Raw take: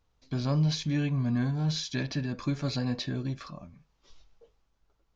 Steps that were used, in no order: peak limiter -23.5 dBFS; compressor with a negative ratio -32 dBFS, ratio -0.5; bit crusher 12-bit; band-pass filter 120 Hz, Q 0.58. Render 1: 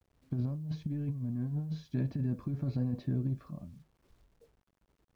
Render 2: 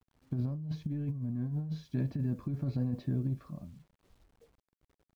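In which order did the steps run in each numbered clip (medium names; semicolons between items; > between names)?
band-pass filter > peak limiter > compressor with a negative ratio > bit crusher; band-pass filter > bit crusher > peak limiter > compressor with a negative ratio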